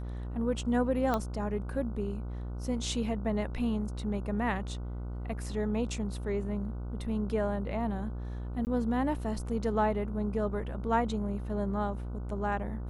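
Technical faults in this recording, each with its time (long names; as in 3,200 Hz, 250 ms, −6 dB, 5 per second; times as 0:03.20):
mains buzz 60 Hz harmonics 25 −37 dBFS
0:01.14: click −17 dBFS
0:08.65–0:08.67: drop-out 19 ms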